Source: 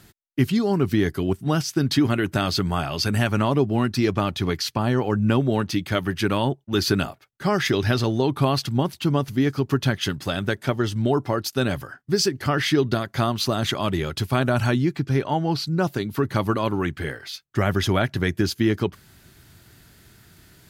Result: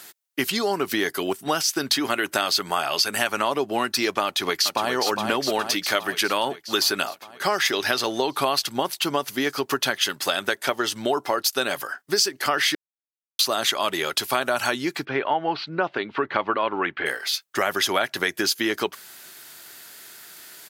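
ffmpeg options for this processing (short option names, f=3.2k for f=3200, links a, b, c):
-filter_complex "[0:a]asplit=2[a][b];[b]afade=t=in:st=4.24:d=0.01,afade=t=out:st=4.91:d=0.01,aecho=0:1:410|820|1230|1640|2050|2460|2870|3280|3690:0.473151|0.307548|0.199906|0.129939|0.0844605|0.0548993|0.0356845|0.023195|0.0150767[c];[a][c]amix=inputs=2:normalize=0,asettb=1/sr,asplit=3[d][e][f];[d]atrim=end=15.054[g];[e]atrim=start=15.05:end=17.06,asetpts=PTS-STARTPTS,afade=t=in:d=0.004:c=qsin,afade=t=out:st=2.006:d=0.004:c=qsin,lowpass=f=3k:w=0.5412,lowpass=f=3k:w=1.3066[h];[f]atrim=start=17.056[i];[g][h]acrossfade=d=0.004:c1=hsin:c2=qsin[j];[j][i]acrossfade=d=0.004:c1=qsin:c2=hsin,asplit=3[k][l][m];[k]atrim=end=12.75,asetpts=PTS-STARTPTS,afade=t=out:st=12.746:d=0.004:c=hsin[n];[l]atrim=start=12.75:end=13.39,asetpts=PTS-STARTPTS,volume=0[o];[m]atrim=start=13.39,asetpts=PTS-STARTPTS,afade=t=in:d=0.004:c=hsin[p];[n][o][p]concat=n=3:v=0:a=1,highpass=550,highshelf=f=5.4k:g=6.5,acompressor=threshold=-28dB:ratio=3,volume=8dB"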